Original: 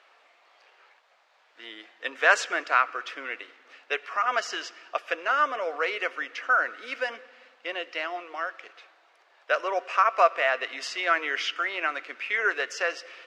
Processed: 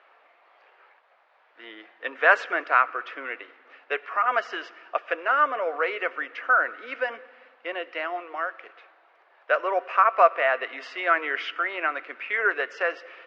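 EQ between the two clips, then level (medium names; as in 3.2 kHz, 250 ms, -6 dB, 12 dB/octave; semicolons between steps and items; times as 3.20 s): band-pass 220–2100 Hz; +3.0 dB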